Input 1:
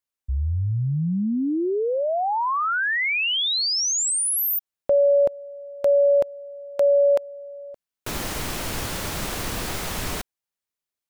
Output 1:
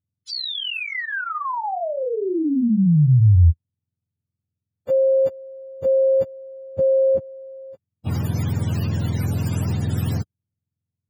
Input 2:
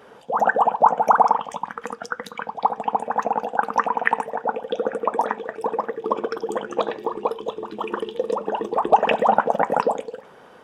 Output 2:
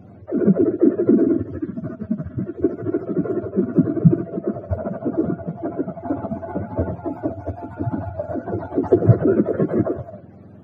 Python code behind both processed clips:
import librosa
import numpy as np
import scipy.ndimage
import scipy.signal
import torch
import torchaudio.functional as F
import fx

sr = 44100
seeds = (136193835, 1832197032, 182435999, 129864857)

y = fx.octave_mirror(x, sr, pivot_hz=550.0)
y = fx.bass_treble(y, sr, bass_db=8, treble_db=0)